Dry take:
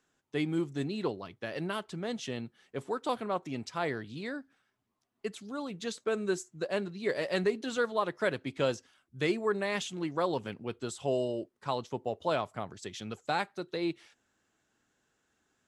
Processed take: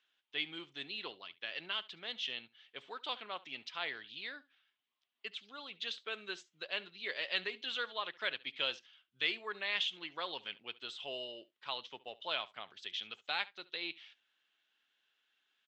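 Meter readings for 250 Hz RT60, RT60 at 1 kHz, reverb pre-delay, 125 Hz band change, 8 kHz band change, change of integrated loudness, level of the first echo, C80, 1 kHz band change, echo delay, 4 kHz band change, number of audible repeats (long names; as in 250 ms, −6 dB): no reverb audible, no reverb audible, no reverb audible, −25.5 dB, −15.0 dB, −5.5 dB, −20.5 dB, no reverb audible, −9.0 dB, 70 ms, +5.5 dB, 1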